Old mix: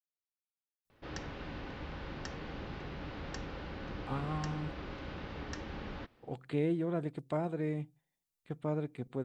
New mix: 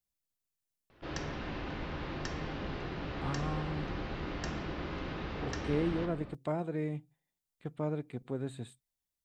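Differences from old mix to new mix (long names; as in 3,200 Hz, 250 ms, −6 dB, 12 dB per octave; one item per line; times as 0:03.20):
speech: entry −0.85 s
reverb: on, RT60 2.1 s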